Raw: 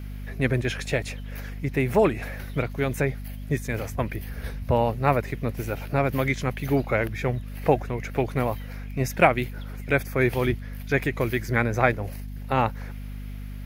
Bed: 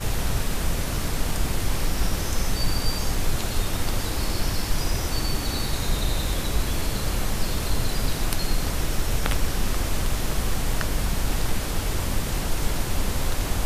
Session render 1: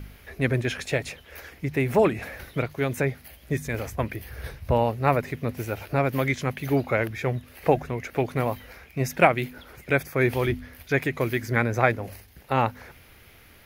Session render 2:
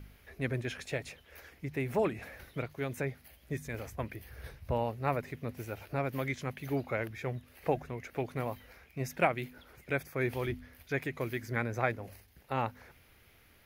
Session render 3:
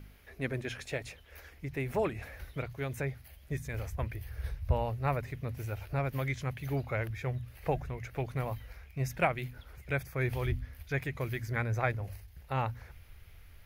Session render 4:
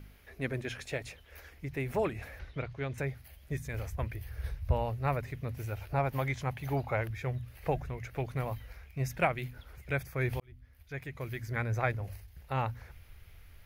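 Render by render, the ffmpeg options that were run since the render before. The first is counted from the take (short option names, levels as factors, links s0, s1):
-af "bandreject=f=50:t=h:w=4,bandreject=f=100:t=h:w=4,bandreject=f=150:t=h:w=4,bandreject=f=200:t=h:w=4,bandreject=f=250:t=h:w=4"
-af "volume=0.316"
-af "bandreject=f=60:t=h:w=6,bandreject=f=120:t=h:w=6,asubboost=boost=8:cutoff=86"
-filter_complex "[0:a]asettb=1/sr,asplit=3[s0][s1][s2];[s0]atrim=end=2.394[s3];[s1]atrim=start=2.39:end=2.98,asetpts=PTS-STARTPTS,afade=t=in:d=0.004:c=qsin,afade=t=out:st=0.586:d=0.004:c=qsin,lowpass=5000[s4];[s2]atrim=start=2.976[s5];[s3][s4]acrossfade=d=0.004:c1=hsin:c2=qsin[s6];[s6][s5]acrossfade=d=0.004:c1=qsin:c2=hsin,asettb=1/sr,asplit=3[s7][s8][s9];[s7]atrim=end=5.924[s10];[s8]atrim=start=5.92:end=7.01,asetpts=PTS-STARTPTS,afade=t=in:d=0.004:c=qsin,afade=t=out:st=1.086:d=0.004:c=qsin,equalizer=f=840:w=1.9:g=9[s11];[s9]atrim=start=7.006[s12];[s10][s11]acrossfade=d=0.004:c1=hsin:c2=qsin[s13];[s13][s12]acrossfade=d=0.004:c1=qsin:c2=hsin,asplit=2[s14][s15];[s14]atrim=end=10.4,asetpts=PTS-STARTPTS,afade=t=out:st=10.396:d=0.004:c=hsin[s16];[s15]atrim=start=10.4,asetpts=PTS-STARTPTS,afade=t=in:d=1.32[s17];[s16][s17]concat=n=2:v=0:a=1"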